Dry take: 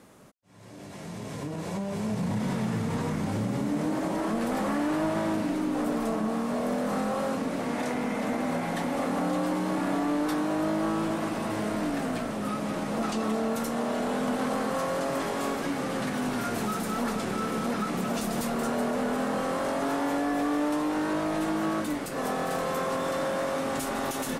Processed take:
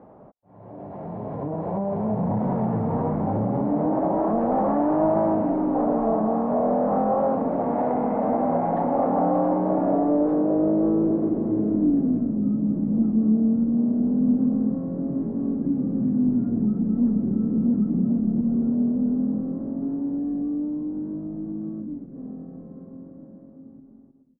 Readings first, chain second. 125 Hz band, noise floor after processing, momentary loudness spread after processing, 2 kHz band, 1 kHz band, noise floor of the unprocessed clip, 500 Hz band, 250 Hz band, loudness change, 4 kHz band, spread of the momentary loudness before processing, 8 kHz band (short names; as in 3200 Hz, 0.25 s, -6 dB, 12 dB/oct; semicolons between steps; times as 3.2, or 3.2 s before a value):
+5.5 dB, -47 dBFS, 11 LU, under -10 dB, +3.0 dB, -38 dBFS, +4.5 dB, +7.0 dB, +6.0 dB, under -30 dB, 3 LU, under -40 dB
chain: ending faded out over 6.75 s; air absorption 140 m; low-pass sweep 770 Hz -> 240 Hz, 9.39–12.55; gain +4 dB